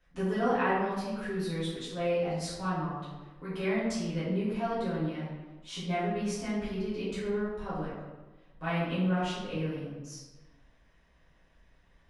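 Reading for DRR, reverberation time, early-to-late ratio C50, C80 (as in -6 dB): -12.5 dB, 1.2 s, 0.0 dB, 2.5 dB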